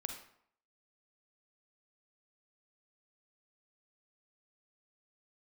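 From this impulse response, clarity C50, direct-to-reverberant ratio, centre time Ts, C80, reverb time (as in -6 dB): 5.5 dB, 4.5 dB, 23 ms, 9.5 dB, 0.65 s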